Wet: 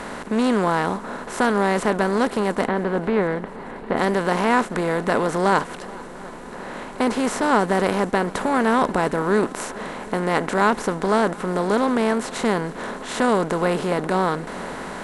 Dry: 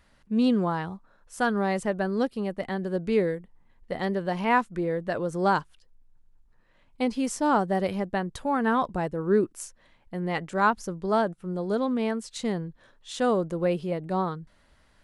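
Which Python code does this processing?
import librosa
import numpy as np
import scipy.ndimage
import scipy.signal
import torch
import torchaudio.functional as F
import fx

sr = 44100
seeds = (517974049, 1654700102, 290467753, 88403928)

y = fx.bin_compress(x, sr, power=0.4)
y = fx.air_absorb(y, sr, metres=320.0, at=(2.68, 3.97))
y = fx.echo_swing(y, sr, ms=723, ratio=1.5, feedback_pct=70, wet_db=-22)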